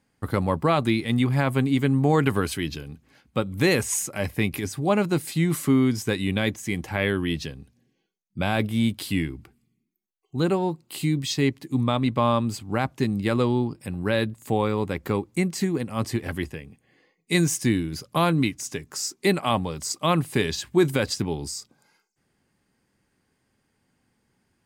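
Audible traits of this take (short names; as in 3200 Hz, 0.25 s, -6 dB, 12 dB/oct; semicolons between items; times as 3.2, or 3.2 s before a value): noise floor -73 dBFS; spectral tilt -5.5 dB/oct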